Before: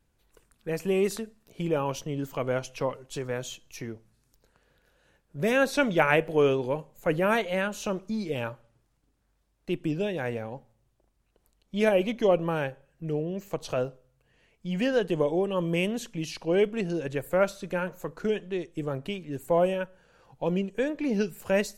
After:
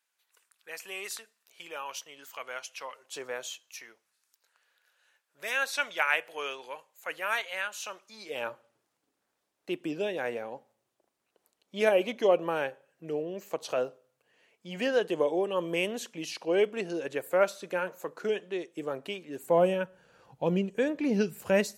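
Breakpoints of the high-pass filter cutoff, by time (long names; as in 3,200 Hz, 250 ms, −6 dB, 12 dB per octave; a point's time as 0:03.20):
0:02.89 1,300 Hz
0:03.22 520 Hz
0:03.80 1,200 Hz
0:08.11 1,200 Hz
0:08.51 350 Hz
0:19.35 350 Hz
0:19.75 91 Hz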